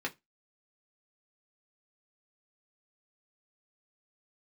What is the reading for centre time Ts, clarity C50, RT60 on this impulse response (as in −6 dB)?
8 ms, 22.5 dB, 0.20 s